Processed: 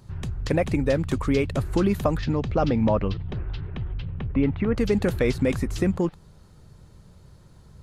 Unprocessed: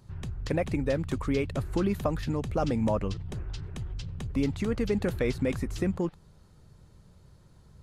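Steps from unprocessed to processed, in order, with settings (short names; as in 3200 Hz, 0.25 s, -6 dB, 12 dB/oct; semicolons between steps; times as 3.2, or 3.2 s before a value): 2.17–4.75 LPF 5900 Hz -> 2400 Hz 24 dB/oct; gain +5.5 dB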